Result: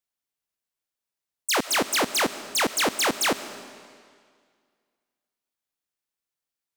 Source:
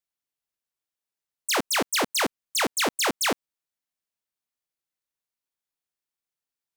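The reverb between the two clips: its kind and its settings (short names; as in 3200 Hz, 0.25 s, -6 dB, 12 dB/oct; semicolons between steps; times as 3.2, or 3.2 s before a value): digital reverb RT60 2 s, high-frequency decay 0.95×, pre-delay 65 ms, DRR 13 dB; gain +1 dB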